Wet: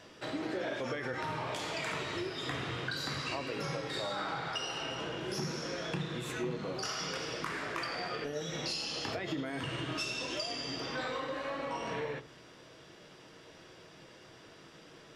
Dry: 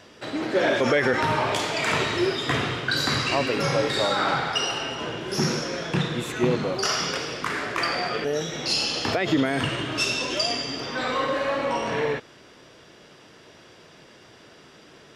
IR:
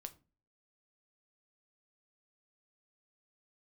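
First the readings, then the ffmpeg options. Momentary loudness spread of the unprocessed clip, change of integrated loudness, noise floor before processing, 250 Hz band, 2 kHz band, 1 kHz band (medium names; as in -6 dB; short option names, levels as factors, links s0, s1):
6 LU, -12.0 dB, -51 dBFS, -12.0 dB, -12.0 dB, -12.0 dB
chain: -filter_complex "[0:a]acompressor=threshold=0.0355:ratio=6[s0];[1:a]atrim=start_sample=2205[s1];[s0][s1]afir=irnorm=-1:irlink=0"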